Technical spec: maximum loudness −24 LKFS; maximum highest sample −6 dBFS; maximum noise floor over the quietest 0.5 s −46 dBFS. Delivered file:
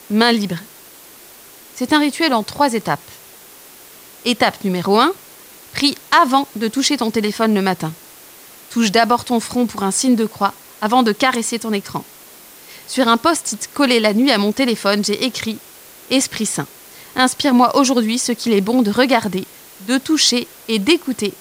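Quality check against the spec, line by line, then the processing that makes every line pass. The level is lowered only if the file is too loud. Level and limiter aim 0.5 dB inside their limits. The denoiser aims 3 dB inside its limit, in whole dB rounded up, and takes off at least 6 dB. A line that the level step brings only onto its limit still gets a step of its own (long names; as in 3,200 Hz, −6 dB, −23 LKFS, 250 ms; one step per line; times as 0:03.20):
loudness −17.0 LKFS: out of spec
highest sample −2.0 dBFS: out of spec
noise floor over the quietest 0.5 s −42 dBFS: out of spec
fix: level −7.5 dB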